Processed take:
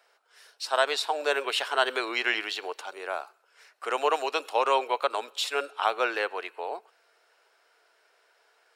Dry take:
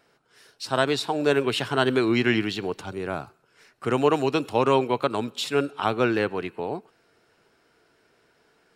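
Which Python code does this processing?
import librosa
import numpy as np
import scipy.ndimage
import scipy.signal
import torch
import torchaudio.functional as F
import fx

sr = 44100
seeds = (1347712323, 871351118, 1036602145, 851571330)

y = scipy.signal.sosfilt(scipy.signal.butter(4, 530.0, 'highpass', fs=sr, output='sos'), x)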